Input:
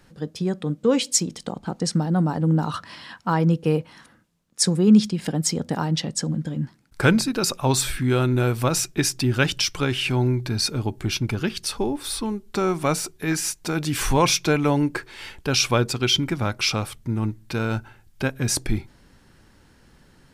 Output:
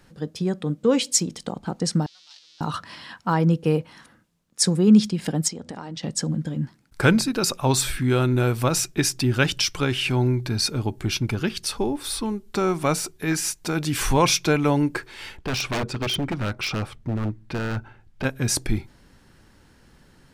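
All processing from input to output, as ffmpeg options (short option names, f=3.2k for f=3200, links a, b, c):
-filter_complex "[0:a]asettb=1/sr,asplit=3[a][b][c];[a]atrim=end=2.064[d];[b]atrim=start=2.06:end=2.61,asetpts=PTS-STARTPTS,afade=t=in:d=0.004:c=qsin,afade=t=out:st=0.546:d=0.004:c=qsin,aeval=exprs='val(0)+0.5*0.0422*sgn(val(0))':c=same,asuperpass=centerf=4400:order=4:qfactor=1.9[e];[c]atrim=start=2.606[f];[d][e]acrossfade=d=0.004:c1=hsin:c2=qsin[g];[g][f]acrossfade=d=0.004:c1=qsin:c2=hsin,asettb=1/sr,asplit=3[h][i][j];[h]atrim=end=5.484[k];[i]atrim=start=5.48:end=6.03,asetpts=PTS-STARTPTS,afade=t=in:d=0.004:c=qsin,afade=t=out:st=0.546:d=0.004:c=qsin,lowpass=f=9.2k:w=0.5412,lowpass=f=9.2k:w=1.3066,equalizer=f=150:w=7.4:g=-11.5,acompressor=threshold=-32dB:ratio=4:attack=3.2:release=140:knee=1:detection=peak[l];[j]atrim=start=6.026[m];[k][l]acrossfade=d=0.004:c1=hsin:c2=qsin[n];[n][m]acrossfade=d=0.004:c1=qsin:c2=hsin,asettb=1/sr,asplit=3[o][p][q];[o]atrim=end=15.374[r];[p]atrim=start=15.37:end=18.25,asetpts=PTS-STARTPTS,afade=t=in:d=0.004:c=qsin,afade=t=out:st=2.876:d=0.004:c=qsin,aemphasis=mode=reproduction:type=75fm,aeval=exprs='0.106*(abs(mod(val(0)/0.106+3,4)-2)-1)':c=same[s];[q]atrim=start=18.246[t];[r][s]acrossfade=d=0.004:c1=hsin:c2=qsin[u];[u][t]acrossfade=d=0.004:c1=qsin:c2=hsin"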